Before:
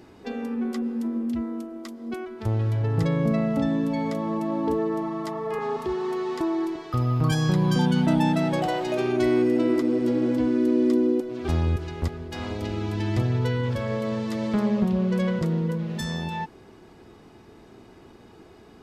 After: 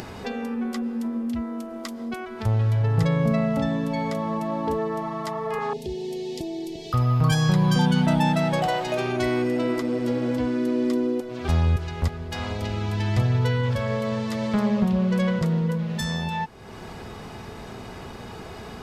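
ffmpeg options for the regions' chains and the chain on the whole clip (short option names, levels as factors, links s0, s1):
-filter_complex "[0:a]asettb=1/sr,asplit=3[s0][s1][s2];[s0]atrim=end=5.734[s3];[s1]atrim=start=5.73:end=6.93,asetpts=PTS-STARTPTS,afade=t=in:d=0.004:c=qsin,afade=t=out:st=1.196:d=0.004:c=qsin,asuperstop=centerf=1300:order=4:qfactor=0.51,equalizer=f=1100:w=2.2:g=-5.5[s4];[s2]atrim=start=6.926[s5];[s3][s4]acrossfade=d=0.004:c1=hsin:c2=qsin[s6];[s6][s5]acrossfade=d=0.004:c1=qsin:c2=hsin,equalizer=f=320:w=2.3:g=-11.5,acompressor=mode=upward:threshold=0.0316:ratio=2.5,volume=1.5"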